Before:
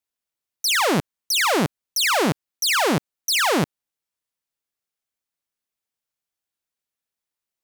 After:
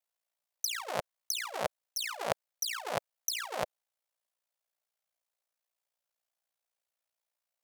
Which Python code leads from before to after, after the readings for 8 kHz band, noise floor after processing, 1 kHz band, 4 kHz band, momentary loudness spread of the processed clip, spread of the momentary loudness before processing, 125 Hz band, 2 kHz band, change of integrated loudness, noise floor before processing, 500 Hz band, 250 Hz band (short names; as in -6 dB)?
-11.5 dB, under -85 dBFS, -14.5 dB, -15.5 dB, 5 LU, 6 LU, -22.0 dB, -17.0 dB, -15.0 dB, under -85 dBFS, -13.5 dB, -27.0 dB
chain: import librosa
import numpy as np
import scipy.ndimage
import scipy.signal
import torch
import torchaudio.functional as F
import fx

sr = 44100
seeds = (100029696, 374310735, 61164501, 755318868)

y = fx.low_shelf_res(x, sr, hz=420.0, db=-12.0, q=3.0)
y = fx.over_compress(y, sr, threshold_db=-24.0, ratio=-0.5)
y = y * np.sin(2.0 * np.pi * 29.0 * np.arange(len(y)) / sr)
y = F.gain(torch.from_numpy(y), -6.5).numpy()